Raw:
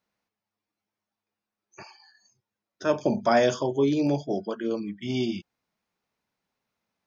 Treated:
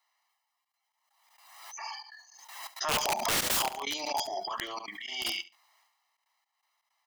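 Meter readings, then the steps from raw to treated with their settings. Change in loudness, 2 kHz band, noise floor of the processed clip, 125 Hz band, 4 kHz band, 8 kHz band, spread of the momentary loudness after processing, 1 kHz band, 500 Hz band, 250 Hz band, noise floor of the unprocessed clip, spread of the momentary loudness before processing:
-5.0 dB, +0.5 dB, -83 dBFS, -16.5 dB, +7.5 dB, n/a, 19 LU, -1.5 dB, -13.5 dB, -19.5 dB, under -85 dBFS, 9 LU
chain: HPF 690 Hz 24 dB/oct; transient shaper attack -12 dB, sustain +10 dB; comb 1 ms, depth 96%; in parallel at -3 dB: compressor 12:1, threshold -34 dBFS, peak gain reduction 14.5 dB; on the sum: wrapped overs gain 22.5 dB; step gate "xxxxxxx.xx..xx." 163 bpm -24 dB; on a send: feedback echo 71 ms, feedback 16%, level -18 dB; on the sum: backwards sustainer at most 48 dB/s

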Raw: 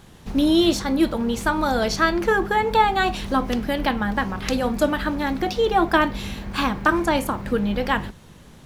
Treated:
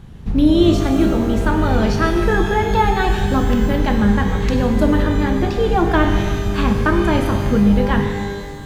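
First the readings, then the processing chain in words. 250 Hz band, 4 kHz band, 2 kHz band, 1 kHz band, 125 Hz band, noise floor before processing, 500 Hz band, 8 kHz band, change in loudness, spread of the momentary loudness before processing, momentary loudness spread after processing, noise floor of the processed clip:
+6.5 dB, -1.0 dB, +0.5 dB, +0.5 dB, +13.5 dB, -47 dBFS, +4.0 dB, -1.0 dB, +4.5 dB, 6 LU, 4 LU, -30 dBFS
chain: tone controls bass +13 dB, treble -7 dB; shimmer reverb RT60 1.7 s, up +12 st, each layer -8 dB, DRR 4.5 dB; gain -1 dB

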